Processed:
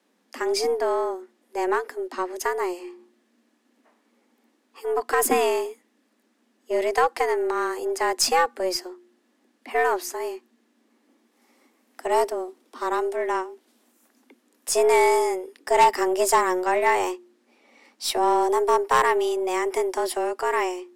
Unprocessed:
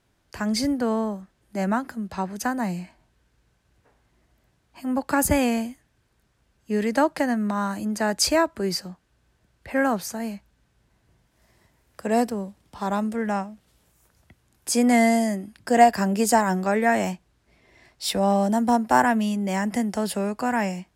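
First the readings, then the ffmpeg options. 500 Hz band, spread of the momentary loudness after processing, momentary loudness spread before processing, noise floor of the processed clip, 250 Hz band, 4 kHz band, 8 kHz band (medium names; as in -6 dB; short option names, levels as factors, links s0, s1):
+3.5 dB, 13 LU, 13 LU, -68 dBFS, -10.5 dB, +0.5 dB, 0.0 dB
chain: -af "afreqshift=180,bandreject=f=59.23:t=h:w=4,bandreject=f=118.46:t=h:w=4,bandreject=f=177.69:t=h:w=4,bandreject=f=236.92:t=h:w=4,bandreject=f=296.15:t=h:w=4,bandreject=f=355.38:t=h:w=4,aeval=exprs='0.631*(cos(1*acos(clip(val(0)/0.631,-1,1)))-cos(1*PI/2))+0.112*(cos(5*acos(clip(val(0)/0.631,-1,1)))-cos(5*PI/2))+0.0251*(cos(6*acos(clip(val(0)/0.631,-1,1)))-cos(6*PI/2))+0.0398*(cos(7*acos(clip(val(0)/0.631,-1,1)))-cos(7*PI/2))+0.0398*(cos(8*acos(clip(val(0)/0.631,-1,1)))-cos(8*PI/2))':c=same,volume=0.708"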